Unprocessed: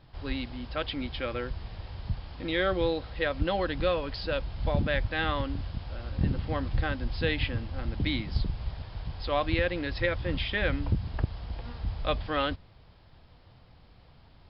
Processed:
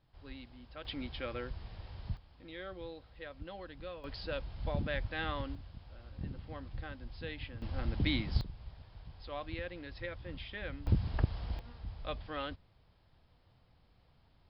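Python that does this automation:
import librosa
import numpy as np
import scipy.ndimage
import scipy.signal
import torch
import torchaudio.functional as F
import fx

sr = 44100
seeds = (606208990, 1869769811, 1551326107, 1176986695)

y = fx.gain(x, sr, db=fx.steps((0.0, -15.5), (0.85, -7.0), (2.17, -18.0), (4.04, -8.0), (5.55, -14.5), (7.62, -2.5), (8.41, -14.0), (10.87, -1.5), (11.59, -11.0)))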